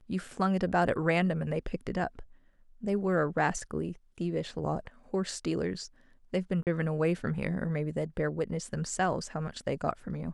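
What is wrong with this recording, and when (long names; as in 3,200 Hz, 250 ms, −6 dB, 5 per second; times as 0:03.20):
0:06.63–0:06.67: drop-out 38 ms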